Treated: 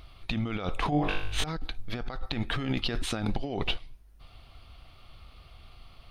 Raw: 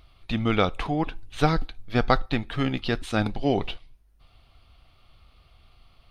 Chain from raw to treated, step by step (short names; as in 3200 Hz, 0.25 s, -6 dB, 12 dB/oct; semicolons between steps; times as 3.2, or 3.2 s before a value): negative-ratio compressor -30 dBFS, ratio -1; 0.9–1.44 flutter echo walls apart 3.5 m, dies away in 0.65 s